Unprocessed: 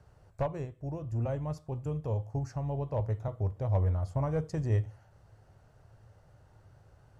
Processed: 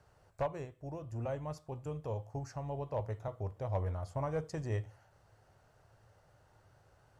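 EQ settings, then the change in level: low shelf 320 Hz -9.5 dB; 0.0 dB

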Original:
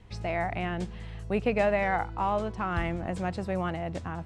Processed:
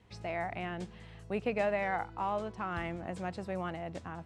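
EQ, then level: HPF 140 Hz 6 dB/oct; -5.5 dB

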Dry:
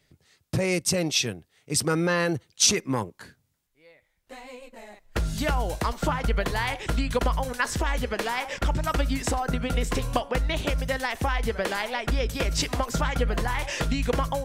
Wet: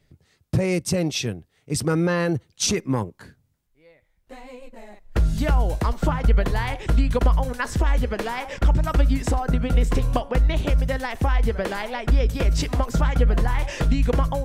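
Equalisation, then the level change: tilt -2 dB/oct; high shelf 9300 Hz +5.5 dB; 0.0 dB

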